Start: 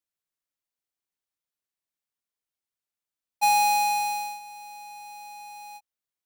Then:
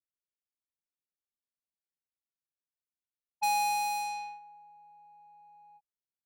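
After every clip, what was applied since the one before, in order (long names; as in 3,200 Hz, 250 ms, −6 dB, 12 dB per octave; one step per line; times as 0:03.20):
low-pass that shuts in the quiet parts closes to 420 Hz, open at −23 dBFS
level −7.5 dB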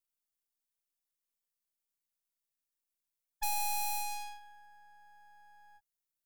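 downward compressor, threshold −31 dBFS, peak gain reduction 4 dB
half-wave rectification
high-shelf EQ 5,800 Hz +11.5 dB
level +1 dB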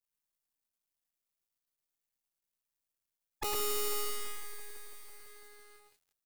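sub-harmonics by changed cycles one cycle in 2, muted
on a send: single-tap delay 108 ms −3 dB
on the sum: feedback echo at a low word length 166 ms, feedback 80%, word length 9 bits, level −11 dB
level +1 dB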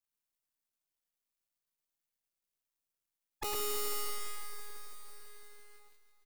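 repeating echo 317 ms, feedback 53%, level −14 dB
level −2 dB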